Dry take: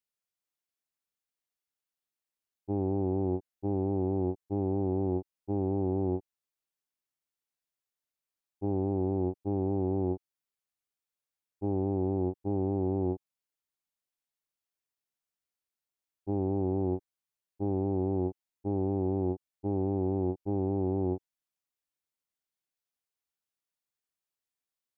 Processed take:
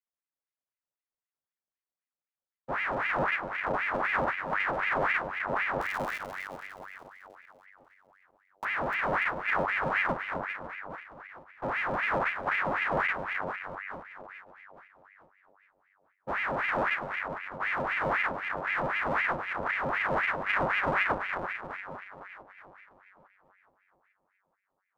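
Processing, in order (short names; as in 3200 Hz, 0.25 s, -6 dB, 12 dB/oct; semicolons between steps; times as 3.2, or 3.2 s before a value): elliptic low-pass 920 Hz; 5.81–8.65 Schmitt trigger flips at -35.5 dBFS; 20.33–21.03 comb 4.7 ms, depth 75%; split-band echo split 350 Hz, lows 0.426 s, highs 0.293 s, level -6 dB; half-wave rectifier; ring modulator with a swept carrier 1300 Hz, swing 60%, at 3.9 Hz; gain +6.5 dB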